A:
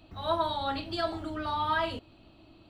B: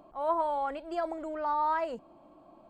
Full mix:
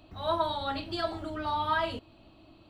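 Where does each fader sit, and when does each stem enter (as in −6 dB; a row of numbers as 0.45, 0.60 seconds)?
−0.5, −10.0 decibels; 0.00, 0.00 seconds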